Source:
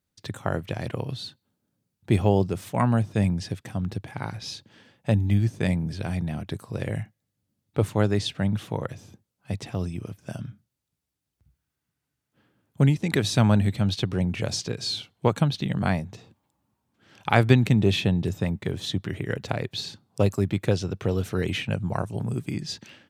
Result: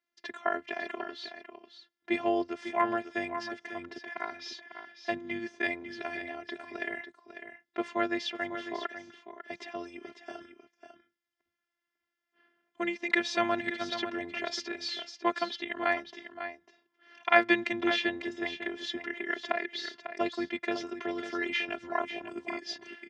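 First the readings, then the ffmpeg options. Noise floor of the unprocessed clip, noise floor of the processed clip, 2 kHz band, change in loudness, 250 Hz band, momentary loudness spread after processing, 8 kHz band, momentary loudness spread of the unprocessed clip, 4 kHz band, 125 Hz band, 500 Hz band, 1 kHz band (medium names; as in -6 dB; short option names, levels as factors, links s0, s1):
-83 dBFS, under -85 dBFS, +3.0 dB, -7.0 dB, -9.5 dB, 16 LU, -11.0 dB, 14 LU, -4.5 dB, -34.5 dB, -5.5 dB, -0.5 dB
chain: -af "afftfilt=real='hypot(re,im)*cos(PI*b)':imag='0':win_size=512:overlap=0.75,highpass=270,equalizer=f=310:t=q:w=4:g=-9,equalizer=f=1900:t=q:w=4:g=9,equalizer=f=4000:t=q:w=4:g=-7,lowpass=f=5100:w=0.5412,lowpass=f=5100:w=1.3066,aecho=1:1:548:0.316,volume=1.26"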